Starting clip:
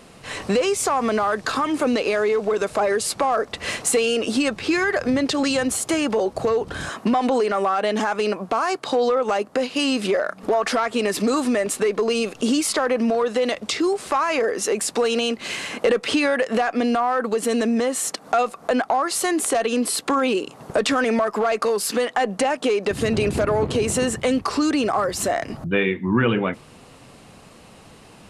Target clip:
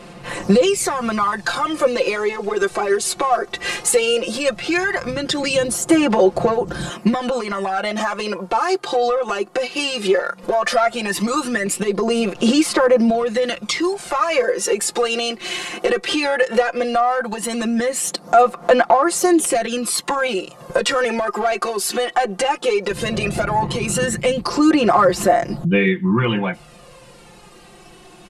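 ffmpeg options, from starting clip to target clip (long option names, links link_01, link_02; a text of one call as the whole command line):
ffmpeg -i in.wav -af "aecho=1:1:5.7:0.92,aphaser=in_gain=1:out_gain=1:delay=2.7:decay=0.52:speed=0.16:type=sinusoidal,volume=-1dB" out.wav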